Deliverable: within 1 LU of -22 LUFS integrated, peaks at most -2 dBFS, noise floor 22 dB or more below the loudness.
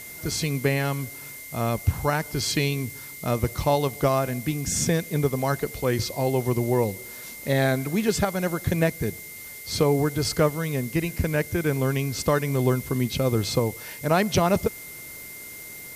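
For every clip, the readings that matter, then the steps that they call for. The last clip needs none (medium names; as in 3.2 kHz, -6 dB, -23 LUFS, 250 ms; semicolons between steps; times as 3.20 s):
steady tone 2.1 kHz; tone level -42 dBFS; noise floor -40 dBFS; noise floor target -47 dBFS; loudness -25.0 LUFS; peak level -9.5 dBFS; loudness target -22.0 LUFS
-> band-stop 2.1 kHz, Q 30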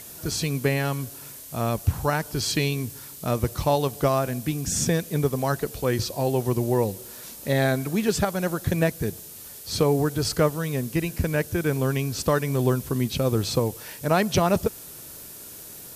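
steady tone not found; noise floor -42 dBFS; noise floor target -47 dBFS
-> noise reduction 6 dB, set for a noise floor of -42 dBFS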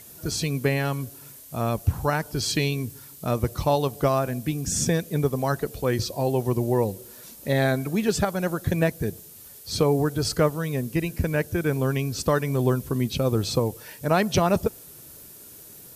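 noise floor -46 dBFS; noise floor target -47 dBFS
-> noise reduction 6 dB, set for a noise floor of -46 dBFS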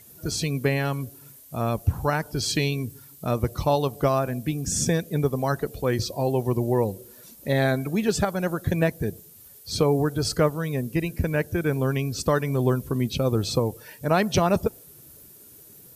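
noise floor -49 dBFS; loudness -25.0 LUFS; peak level -10.0 dBFS; loudness target -22.0 LUFS
-> trim +3 dB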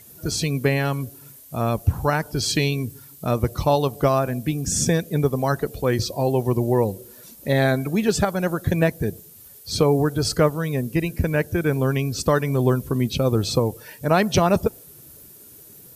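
loudness -22.0 LUFS; peak level -7.0 dBFS; noise floor -46 dBFS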